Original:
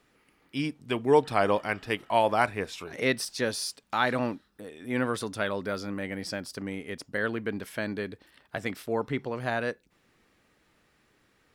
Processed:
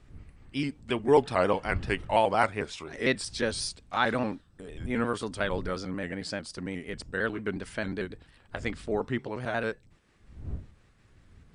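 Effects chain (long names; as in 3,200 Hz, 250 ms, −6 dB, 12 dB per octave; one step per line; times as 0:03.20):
pitch shifter gated in a rhythm −1.5 semitones, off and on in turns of 90 ms
wind on the microphone 95 Hz −45 dBFS
MP2 192 kbit/s 32,000 Hz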